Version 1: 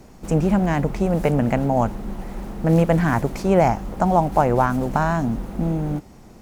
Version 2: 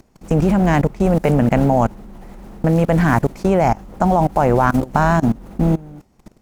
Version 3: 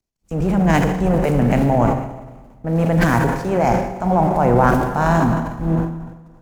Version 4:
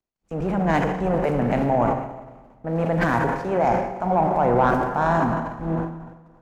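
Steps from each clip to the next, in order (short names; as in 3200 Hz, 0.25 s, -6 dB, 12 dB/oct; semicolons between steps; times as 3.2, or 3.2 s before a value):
level quantiser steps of 22 dB; gain +8 dB
Schroeder reverb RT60 3 s, combs from 33 ms, DRR 4.5 dB; transient shaper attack -2 dB, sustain +8 dB; three-band expander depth 100%; gain -2.5 dB
overdrive pedal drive 11 dB, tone 1300 Hz, clips at -1 dBFS; gain -4.5 dB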